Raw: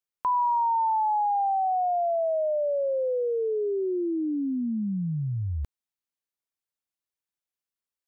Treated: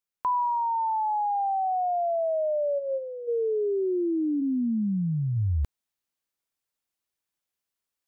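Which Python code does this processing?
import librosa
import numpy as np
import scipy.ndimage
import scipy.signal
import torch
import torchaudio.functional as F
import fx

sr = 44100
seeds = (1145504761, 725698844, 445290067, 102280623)

y = fx.rider(x, sr, range_db=10, speed_s=0.5)
y = fx.comb_fb(y, sr, f0_hz=180.0, decay_s=0.19, harmonics='all', damping=0.0, mix_pct=80, at=(2.78, 3.27), fade=0.02)
y = fx.cheby_ripple(y, sr, hz=950.0, ripple_db=3, at=(4.4, 5.35), fade=0.02)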